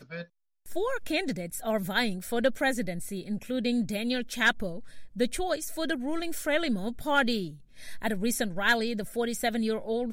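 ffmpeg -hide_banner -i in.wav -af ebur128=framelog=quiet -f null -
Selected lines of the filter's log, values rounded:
Integrated loudness:
  I:         -29.4 LUFS
  Threshold: -39.8 LUFS
Loudness range:
  LRA:         1.4 LU
  Threshold: -49.7 LUFS
  LRA low:   -30.3 LUFS
  LRA high:  -28.9 LUFS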